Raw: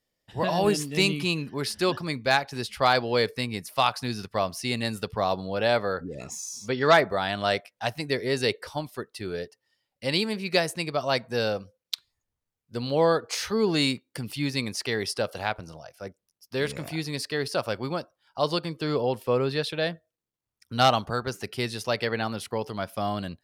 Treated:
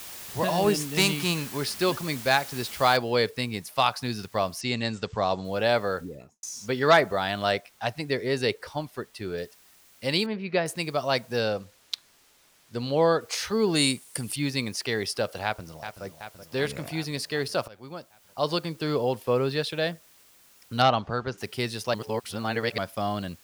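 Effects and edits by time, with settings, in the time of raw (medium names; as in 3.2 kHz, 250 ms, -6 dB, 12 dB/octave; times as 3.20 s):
0.96–1.56 s: formants flattened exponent 0.6
2.97 s: noise floor step -41 dB -57 dB
4.61–5.45 s: steep low-pass 8.1 kHz 96 dB/octave
5.95–6.43 s: studio fade out
7.51–9.38 s: treble shelf 4.8 kHz -5.5 dB
10.26–10.66 s: distance through air 330 m
11.40–13.21 s: treble shelf 11 kHz -10.5 dB
13.75–14.36 s: peaking EQ 9.2 kHz +13.5 dB 0.72 oct
15.44–16.05 s: echo throw 380 ms, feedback 70%, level -9.5 dB
17.68–18.56 s: fade in linear, from -22.5 dB
20.82–21.38 s: distance through air 150 m
21.94–22.78 s: reverse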